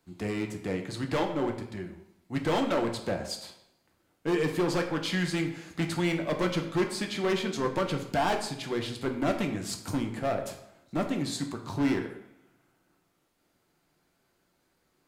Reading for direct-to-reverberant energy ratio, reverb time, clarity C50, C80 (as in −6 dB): 3.0 dB, 0.75 s, 8.5 dB, 11.5 dB